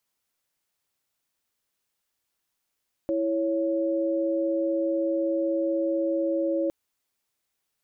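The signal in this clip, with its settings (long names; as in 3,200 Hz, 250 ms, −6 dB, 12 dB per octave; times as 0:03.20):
held notes E4/C#5 sine, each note −25.5 dBFS 3.61 s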